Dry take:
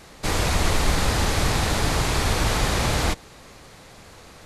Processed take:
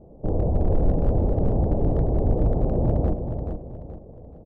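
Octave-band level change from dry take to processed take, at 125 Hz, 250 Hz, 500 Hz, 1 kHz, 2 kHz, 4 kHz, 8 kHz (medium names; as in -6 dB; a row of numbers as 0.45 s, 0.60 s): +2.5 dB, +2.5 dB, +2.0 dB, -9.5 dB, under -25 dB, under -35 dB, under -40 dB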